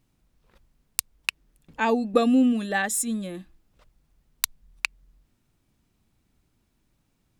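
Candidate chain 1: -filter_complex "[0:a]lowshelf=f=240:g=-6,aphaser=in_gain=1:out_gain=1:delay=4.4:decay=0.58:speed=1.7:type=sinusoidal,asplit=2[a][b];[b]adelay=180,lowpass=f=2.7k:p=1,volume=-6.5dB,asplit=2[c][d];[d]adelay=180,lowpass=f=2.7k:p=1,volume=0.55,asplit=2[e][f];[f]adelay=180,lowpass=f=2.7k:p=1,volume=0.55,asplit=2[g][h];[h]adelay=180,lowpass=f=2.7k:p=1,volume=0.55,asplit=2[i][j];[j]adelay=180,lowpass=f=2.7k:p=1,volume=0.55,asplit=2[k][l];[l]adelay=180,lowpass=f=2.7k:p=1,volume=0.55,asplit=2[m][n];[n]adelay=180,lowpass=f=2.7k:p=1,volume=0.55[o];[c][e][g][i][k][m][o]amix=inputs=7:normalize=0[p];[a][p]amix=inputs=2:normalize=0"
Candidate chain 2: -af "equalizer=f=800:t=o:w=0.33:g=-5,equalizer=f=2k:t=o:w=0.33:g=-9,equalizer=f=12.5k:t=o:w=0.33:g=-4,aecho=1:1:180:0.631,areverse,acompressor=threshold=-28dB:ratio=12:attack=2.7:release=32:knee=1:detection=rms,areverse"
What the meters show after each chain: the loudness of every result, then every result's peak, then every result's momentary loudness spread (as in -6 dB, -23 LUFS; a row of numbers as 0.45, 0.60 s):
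-24.0, -34.5 LUFS; -2.5, -17.5 dBFS; 20, 13 LU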